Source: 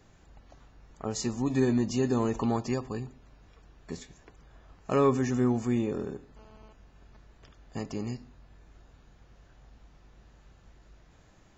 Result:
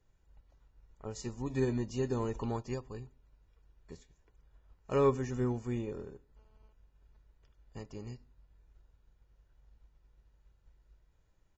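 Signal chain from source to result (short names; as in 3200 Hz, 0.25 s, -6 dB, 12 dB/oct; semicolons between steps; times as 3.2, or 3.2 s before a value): low shelf 70 Hz +11.5 dB; comb 2.1 ms, depth 32%; upward expander 1.5:1, over -48 dBFS; gain -4 dB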